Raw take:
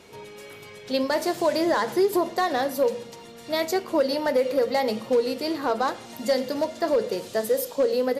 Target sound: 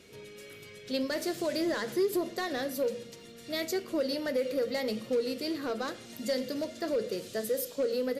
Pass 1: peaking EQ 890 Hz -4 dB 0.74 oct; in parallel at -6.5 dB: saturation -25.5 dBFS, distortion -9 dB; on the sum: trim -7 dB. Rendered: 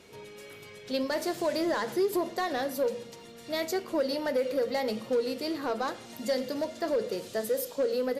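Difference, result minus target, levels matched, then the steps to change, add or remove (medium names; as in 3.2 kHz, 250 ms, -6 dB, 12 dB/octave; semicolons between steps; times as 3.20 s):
1 kHz band +4.5 dB
change: peaking EQ 890 Hz -14.5 dB 0.74 oct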